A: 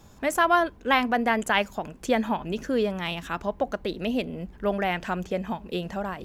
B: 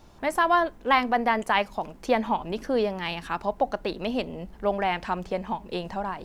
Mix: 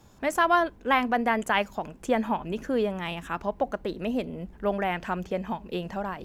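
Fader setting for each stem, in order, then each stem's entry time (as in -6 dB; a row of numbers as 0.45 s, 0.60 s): -4.0 dB, -10.5 dB; 0.00 s, 0.00 s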